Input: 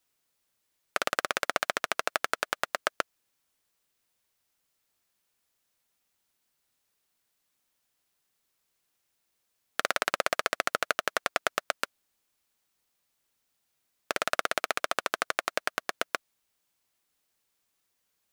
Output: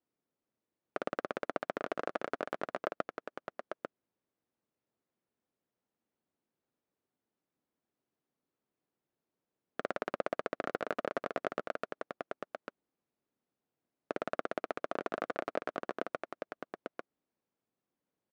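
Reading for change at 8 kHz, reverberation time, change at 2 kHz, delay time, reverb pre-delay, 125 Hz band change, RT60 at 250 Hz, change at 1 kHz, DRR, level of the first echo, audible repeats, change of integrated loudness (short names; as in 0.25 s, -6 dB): under -20 dB, none, -12.0 dB, 0.846 s, none, -0.5 dB, none, -7.5 dB, none, -5.0 dB, 1, -9.0 dB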